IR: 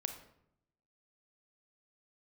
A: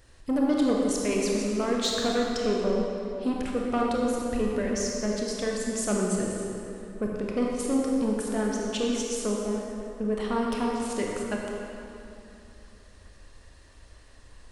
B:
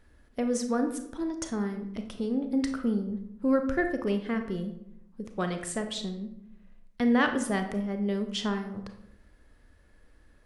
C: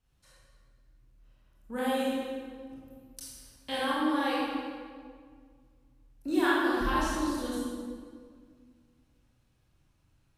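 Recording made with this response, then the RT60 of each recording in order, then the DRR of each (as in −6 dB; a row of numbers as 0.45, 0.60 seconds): B; 2.8, 0.75, 1.9 seconds; −2.0, 6.0, −8.5 decibels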